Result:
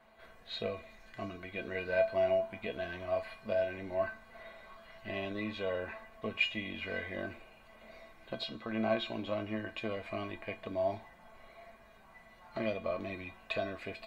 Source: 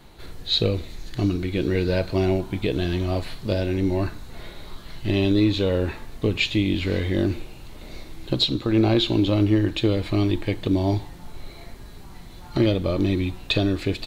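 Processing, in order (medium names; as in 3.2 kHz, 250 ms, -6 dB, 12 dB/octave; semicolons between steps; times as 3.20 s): high-order bell 1.1 kHz +15 dB 2.9 oct; feedback comb 220 Hz, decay 0.17 s, harmonics odd, mix 90%; trim -8.5 dB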